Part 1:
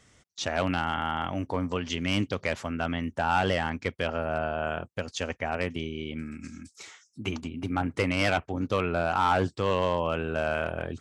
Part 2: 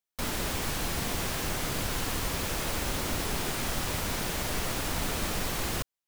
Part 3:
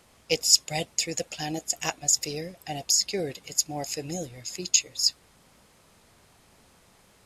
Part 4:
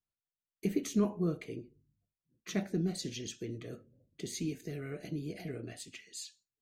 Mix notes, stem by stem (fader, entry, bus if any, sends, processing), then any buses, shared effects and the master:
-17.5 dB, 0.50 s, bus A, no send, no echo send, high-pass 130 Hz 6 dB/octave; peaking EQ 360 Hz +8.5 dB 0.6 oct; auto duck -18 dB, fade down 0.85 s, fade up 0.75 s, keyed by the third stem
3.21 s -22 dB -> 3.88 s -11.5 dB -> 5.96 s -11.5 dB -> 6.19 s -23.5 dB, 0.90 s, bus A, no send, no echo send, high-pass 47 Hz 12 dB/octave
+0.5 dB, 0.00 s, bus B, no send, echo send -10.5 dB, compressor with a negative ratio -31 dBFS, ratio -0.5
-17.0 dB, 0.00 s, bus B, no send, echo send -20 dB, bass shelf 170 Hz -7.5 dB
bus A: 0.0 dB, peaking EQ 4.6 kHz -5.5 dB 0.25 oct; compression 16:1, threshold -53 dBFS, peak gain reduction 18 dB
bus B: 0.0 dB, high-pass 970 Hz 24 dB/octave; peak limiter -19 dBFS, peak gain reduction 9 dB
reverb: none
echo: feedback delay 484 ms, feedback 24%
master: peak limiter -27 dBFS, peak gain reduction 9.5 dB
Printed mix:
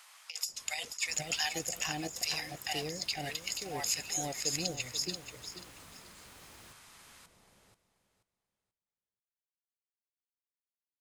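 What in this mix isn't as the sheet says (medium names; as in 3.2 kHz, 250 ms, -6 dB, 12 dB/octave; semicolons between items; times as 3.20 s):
stem 1: muted; master: missing peak limiter -27 dBFS, peak gain reduction 9.5 dB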